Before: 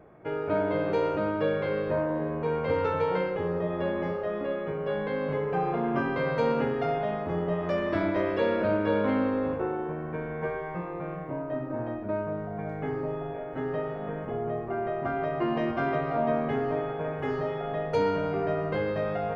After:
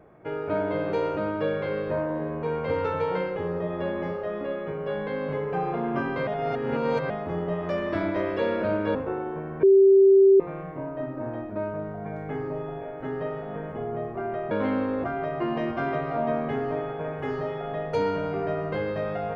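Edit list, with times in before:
6.27–7.10 s: reverse
8.95–9.48 s: move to 15.04 s
10.16–10.93 s: bleep 389 Hz -12 dBFS

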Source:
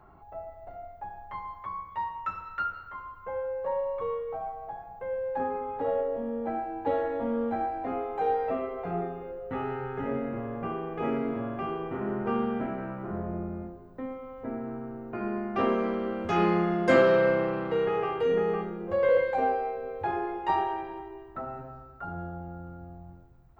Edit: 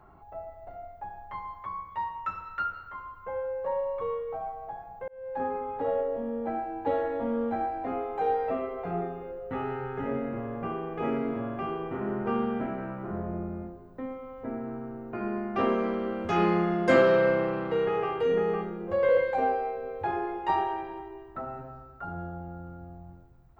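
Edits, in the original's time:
5.08–5.45 s: fade in

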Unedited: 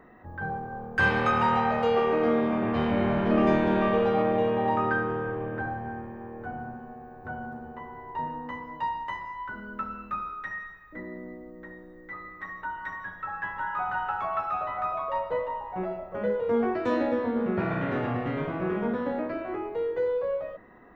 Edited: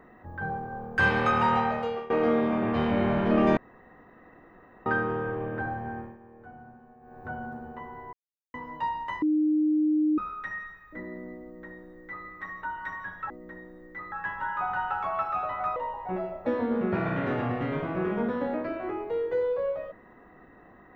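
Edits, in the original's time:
1.57–2.10 s: fade out, to -20.5 dB
3.57–4.86 s: room tone
6.00–7.19 s: dip -11 dB, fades 0.18 s
8.13–8.54 s: mute
9.22–10.18 s: bleep 306 Hz -20.5 dBFS
11.44–12.26 s: copy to 13.30 s
14.94–15.43 s: delete
16.13–17.11 s: delete

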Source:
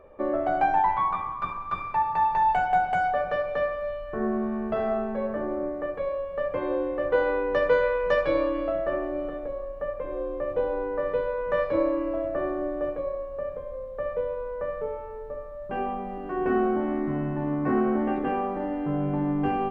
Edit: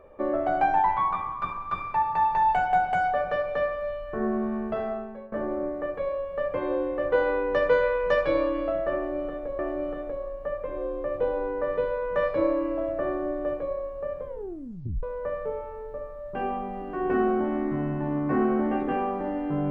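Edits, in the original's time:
4.57–5.32 s: fade out, to -19.5 dB
8.95–9.59 s: loop, 2 plays
13.62 s: tape stop 0.77 s

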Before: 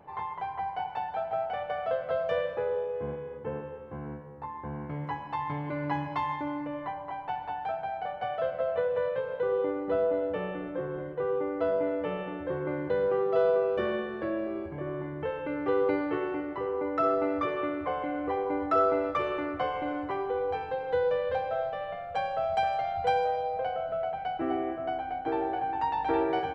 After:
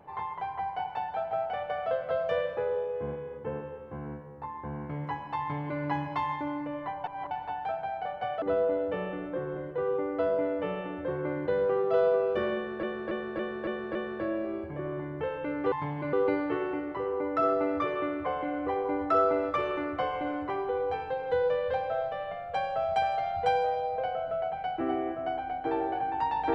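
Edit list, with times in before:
5.40–5.81 s: copy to 15.74 s
7.04–7.31 s: reverse
8.42–9.84 s: delete
13.97–14.25 s: loop, 6 plays

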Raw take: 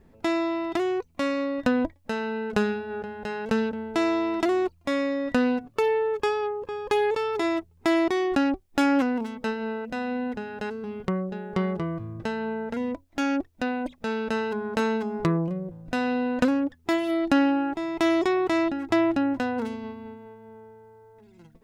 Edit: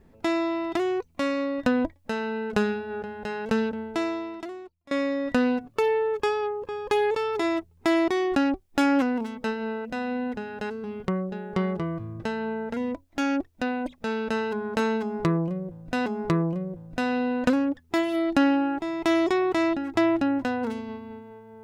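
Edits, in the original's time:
3.80–4.91 s: fade out quadratic, to -22 dB
15.01–16.06 s: loop, 2 plays

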